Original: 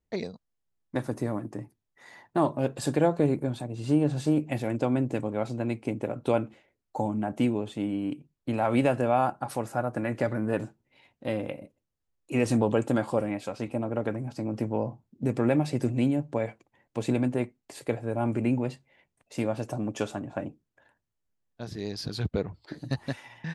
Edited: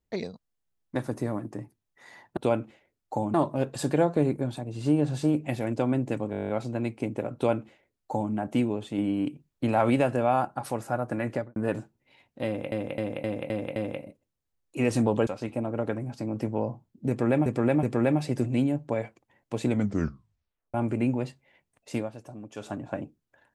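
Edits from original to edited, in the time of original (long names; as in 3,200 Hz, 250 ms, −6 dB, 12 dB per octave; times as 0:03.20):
0:05.34: stutter 0.02 s, 10 plays
0:06.20–0:07.17: duplicate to 0:02.37
0:07.83–0:08.75: clip gain +3 dB
0:10.14–0:10.41: fade out and dull
0:11.31–0:11.57: repeat, 6 plays
0:12.82–0:13.45: remove
0:15.27–0:15.64: repeat, 3 plays
0:17.11: tape stop 1.07 s
0:19.40–0:20.16: duck −11 dB, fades 0.15 s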